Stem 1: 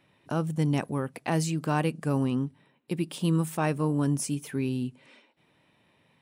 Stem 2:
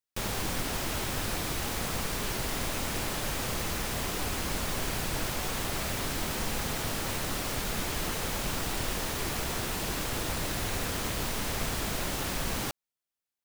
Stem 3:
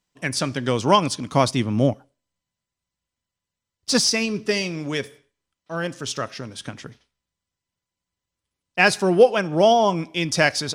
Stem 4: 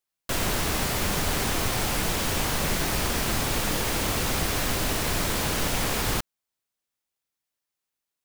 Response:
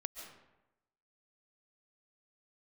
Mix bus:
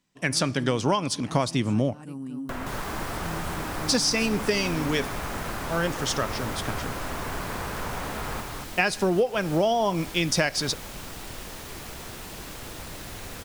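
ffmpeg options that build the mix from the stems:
-filter_complex "[0:a]equalizer=f=250:t=o:w=1:g=11,equalizer=f=500:t=o:w=1:g=-6,equalizer=f=8000:t=o:w=1:g=9,volume=0.141,asplit=2[s0][s1];[s1]volume=0.631[s2];[1:a]adelay=2500,volume=0.473[s3];[2:a]volume=1.12[s4];[3:a]acrossover=split=820|1700[s5][s6][s7];[s5]acompressor=threshold=0.0126:ratio=4[s8];[s6]acompressor=threshold=0.0126:ratio=4[s9];[s7]acompressor=threshold=0.00158:ratio=4[s10];[s8][s9][s10]amix=inputs=3:normalize=0,adelay=2200,volume=1.26,asplit=2[s11][s12];[s12]volume=0.596[s13];[s2][s13]amix=inputs=2:normalize=0,aecho=0:1:234:1[s14];[s0][s3][s4][s11][s14]amix=inputs=5:normalize=0,acompressor=threshold=0.112:ratio=12"

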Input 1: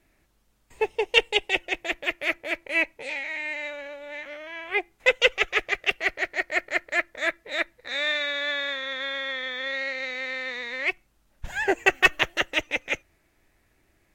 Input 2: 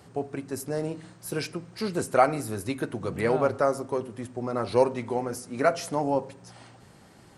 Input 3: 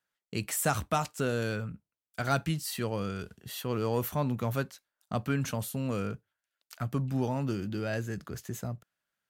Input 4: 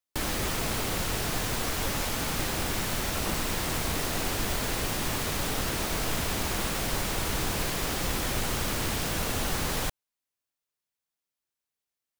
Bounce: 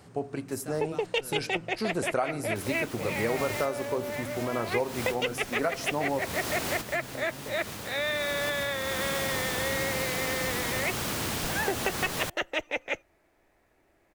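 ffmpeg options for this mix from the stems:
-filter_complex "[0:a]equalizer=f=640:t=o:w=2.5:g=11.5,acrossover=split=280|3000[s0][s1][s2];[s1]acompressor=threshold=0.112:ratio=6[s3];[s0][s3][s2]amix=inputs=3:normalize=0,volume=0.473[s4];[1:a]volume=0.944[s5];[2:a]volume=0.158,asplit=2[s6][s7];[3:a]highpass=91,adelay=2400,volume=0.944[s8];[s7]apad=whole_len=643610[s9];[s8][s9]sidechaincompress=threshold=0.00224:ratio=6:attack=8.6:release=542[s10];[s4][s5][s6][s10]amix=inputs=4:normalize=0,acompressor=threshold=0.0631:ratio=6"

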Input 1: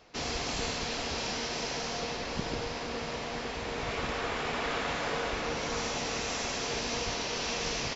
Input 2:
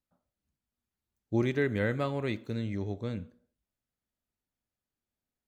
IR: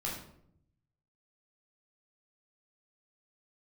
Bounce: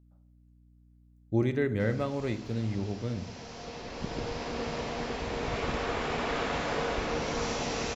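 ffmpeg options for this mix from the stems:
-filter_complex "[0:a]adelay=1650,volume=1.12[s0];[1:a]volume=0.75,asplit=3[s1][s2][s3];[s2]volume=0.211[s4];[s3]apad=whole_len=423449[s5];[s0][s5]sidechaincompress=threshold=0.00355:ratio=4:attack=30:release=1200[s6];[2:a]atrim=start_sample=2205[s7];[s4][s7]afir=irnorm=-1:irlink=0[s8];[s6][s1][s8]amix=inputs=3:normalize=0,tiltshelf=f=970:g=3,aeval=exprs='val(0)+0.00126*(sin(2*PI*60*n/s)+sin(2*PI*2*60*n/s)/2+sin(2*PI*3*60*n/s)/3+sin(2*PI*4*60*n/s)/4+sin(2*PI*5*60*n/s)/5)':c=same"

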